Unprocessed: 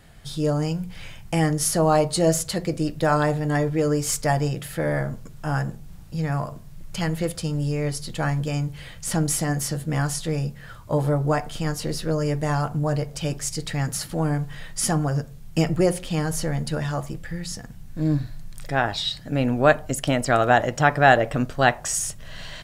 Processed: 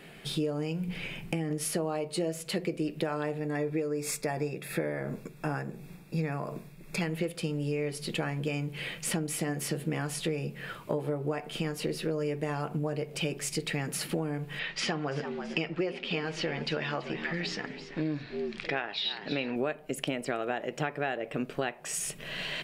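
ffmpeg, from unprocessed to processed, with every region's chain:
-filter_complex "[0:a]asettb=1/sr,asplit=3[s0][s1][s2];[s0]atrim=end=0.884[s3];[s1]atrim=start=0.88:end=1.51,asetpts=PTS-STARTPTS,afade=t=in:d=0.004:c=qsin,afade=t=out:st=0.626:d=0.004:c=qsin,lowshelf=f=370:g=9,acompressor=threshold=0.1:ratio=12:attack=3.2:release=140:knee=1:detection=peak,asoftclip=type=hard:threshold=0.141[s4];[s2]atrim=start=1.506[s5];[s3][s4]acrossfade=d=0.004:c1=hsin:c2=qsin[s6];[s6][s5]acrossfade=d=0.004:c1=qsin:c2=hsin,asettb=1/sr,asplit=3[s7][s8][s9];[s7]atrim=end=3.384[s10];[s8]atrim=start=3.38:end=7.02,asetpts=PTS-STARTPTS,afade=t=in:d=0.004:c=qsin,afade=t=out:st=3.636:d=0.004:c=qsin,tremolo=f=2.8:d=0.42,asuperstop=centerf=3000:order=12:qfactor=6.3[s11];[s9]atrim=start=7.016[s12];[s10][s11]acrossfade=d=0.004:c1=hsin:c2=qsin[s13];[s13][s12]acrossfade=d=0.004:c1=qsin:c2=hsin,asettb=1/sr,asplit=3[s14][s15][s16];[s14]atrim=end=14.594[s17];[s15]atrim=start=14.59:end=19.56,asetpts=PTS-STARTPTS,afade=t=in:d=0.004:c=qsin,afade=t=out:st=4.966:d=0.004:c=qsin,lowpass=f=4900:w=0.5412,lowpass=f=4900:w=1.3066,tiltshelf=f=650:g=-5.5,asplit=5[s18][s19][s20][s21][s22];[s19]adelay=333,afreqshift=85,volume=0.178[s23];[s20]adelay=666,afreqshift=170,volume=0.0733[s24];[s21]adelay=999,afreqshift=255,volume=0.0299[s25];[s22]adelay=1332,afreqshift=340,volume=0.0123[s26];[s18][s23][s24][s25][s26]amix=inputs=5:normalize=0,atrim=end_sample=219177[s27];[s16]atrim=start=19.556[s28];[s17][s27]acrossfade=d=0.004:c1=hsin:c2=qsin[s29];[s29][s28]acrossfade=d=0.004:c1=qsin:c2=hsin,equalizer=f=100:t=o:w=0.67:g=-7,equalizer=f=400:t=o:w=0.67:g=10,equalizer=f=2500:t=o:w=0.67:g=11,equalizer=f=6300:t=o:w=0.67:g=-5,acompressor=threshold=0.0355:ratio=12,lowshelf=f=110:t=q:w=1.5:g=-13"

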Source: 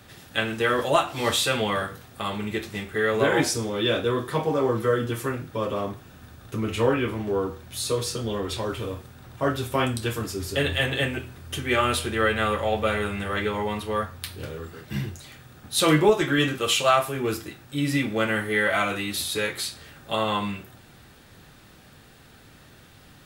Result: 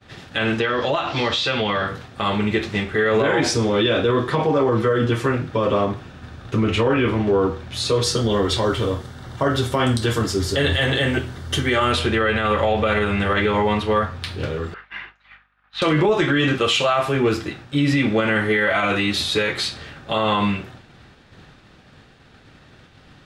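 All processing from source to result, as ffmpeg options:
-filter_complex "[0:a]asettb=1/sr,asplit=3[s0][s1][s2];[s0]atrim=end=0.604[s3];[s1]atrim=start=0.6:end=1.88,asetpts=PTS-STARTPTS,afade=t=in:d=0.004:c=qsin,afade=t=out:st=1.276:d=0.004:c=qsin,lowpass=f=5400:w=0.5412,lowpass=f=5400:w=1.3066,aemphasis=mode=production:type=50kf,acompressor=threshold=0.0501:ratio=10:attack=3.2:release=140:knee=1:detection=peak[s4];[s2]atrim=start=1.876[s5];[s3][s4]acrossfade=d=0.004:c1=hsin:c2=qsin[s6];[s6][s5]acrossfade=d=0.004:c1=qsin:c2=hsin,asettb=1/sr,asplit=3[s7][s8][s9];[s7]atrim=end=8.034[s10];[s8]atrim=start=8.03:end=11.92,asetpts=PTS-STARTPTS,afade=t=in:d=0.004:c=qsin,afade=t=out:st=3.886:d=0.004:c=qsin,highshelf=f=7000:g=12,bandreject=f=2500:w=5.7[s11];[s9]atrim=start=11.916[s12];[s10][s11]acrossfade=d=0.004:c1=hsin:c2=qsin[s13];[s13][s12]acrossfade=d=0.004:c1=qsin:c2=hsin,asettb=1/sr,asplit=3[s14][s15][s16];[s14]atrim=end=14.744[s17];[s15]atrim=start=14.74:end=15.82,asetpts=PTS-STARTPTS,afade=t=in:d=0.004:c=qsin,afade=t=out:st=1.076:d=0.004:c=qsin,asuperpass=centerf=1600:order=4:qfactor=1,aeval=exprs='val(0)+0.000708*(sin(2*PI*50*n/s)+sin(2*PI*2*50*n/s)/2+sin(2*PI*3*50*n/s)/3+sin(2*PI*4*50*n/s)/4+sin(2*PI*5*50*n/s)/5)':c=same[s18];[s16]atrim=start=15.816[s19];[s17][s18]acrossfade=d=0.004:c1=hsin:c2=qsin[s20];[s20][s19]acrossfade=d=0.004:c1=qsin:c2=hsin,agate=range=0.0224:threshold=0.00631:ratio=3:detection=peak,lowpass=4700,alimiter=level_in=8.41:limit=0.891:release=50:level=0:latency=1,volume=0.355"

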